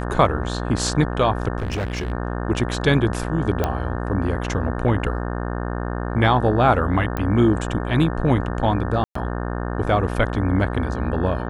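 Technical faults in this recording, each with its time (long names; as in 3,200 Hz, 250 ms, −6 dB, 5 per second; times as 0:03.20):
mains buzz 60 Hz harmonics 30 −26 dBFS
0:01.58–0:02.12: clipping −21 dBFS
0:03.64: click −8 dBFS
0:07.17: click −12 dBFS
0:09.04–0:09.15: drop-out 114 ms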